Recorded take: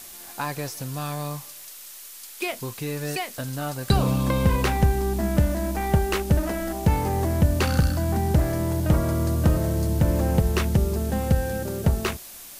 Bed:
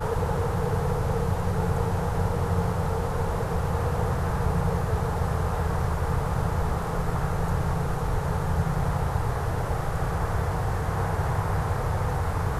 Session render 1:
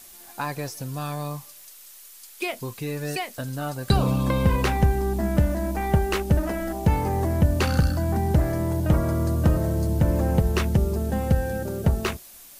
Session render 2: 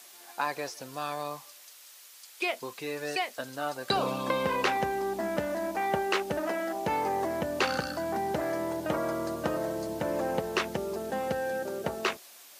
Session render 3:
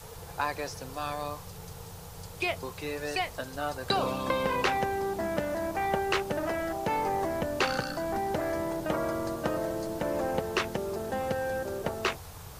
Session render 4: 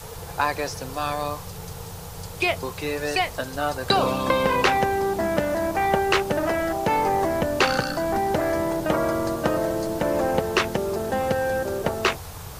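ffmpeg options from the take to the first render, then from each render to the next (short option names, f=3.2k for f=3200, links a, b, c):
-af "afftdn=nr=6:nf=-42"
-filter_complex "[0:a]acrossover=split=6500[a][b];[b]acompressor=threshold=-52dB:ratio=4:attack=1:release=60[c];[a][c]amix=inputs=2:normalize=0,highpass=420"
-filter_complex "[1:a]volume=-19.5dB[a];[0:a][a]amix=inputs=2:normalize=0"
-af "volume=7.5dB"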